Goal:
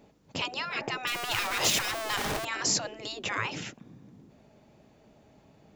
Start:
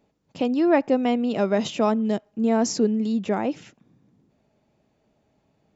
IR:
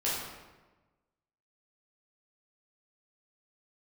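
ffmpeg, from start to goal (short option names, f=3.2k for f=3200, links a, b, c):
-filter_complex "[0:a]asettb=1/sr,asplit=3[a][b][c];[a]atrim=end=1.074[d];[b]atrim=start=1.07:end=2.45,asetpts=PTS-STARTPTS,afade=t=in:d=0.004:c=qsin,afade=t=out:st=1.376:d=0.004:c=qsin,aeval=exprs='val(0)+0.5*0.0299*sgn(val(0))':c=same[e];[c]atrim=start=2.446[f];[d][e]acrossfade=d=0.004:c1=hsin:c2=qsin[g];[g][f]acrossfade=d=0.004:c1=qsin:c2=hsin,afftfilt=real='re*lt(hypot(re,im),0.0794)':imag='im*lt(hypot(re,im),0.0794)':win_size=1024:overlap=0.75,volume=8.5dB"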